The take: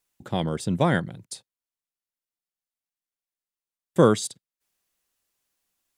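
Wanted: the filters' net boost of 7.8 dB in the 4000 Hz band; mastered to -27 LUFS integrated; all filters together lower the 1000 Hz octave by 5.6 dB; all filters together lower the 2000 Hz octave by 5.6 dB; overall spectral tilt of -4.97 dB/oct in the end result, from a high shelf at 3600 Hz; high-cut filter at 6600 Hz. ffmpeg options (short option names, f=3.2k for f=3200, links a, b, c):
-af "lowpass=6.6k,equalizer=f=1k:t=o:g=-6.5,equalizer=f=2k:t=o:g=-8,highshelf=f=3.6k:g=8,equalizer=f=4k:t=o:g=7.5,volume=-1.5dB"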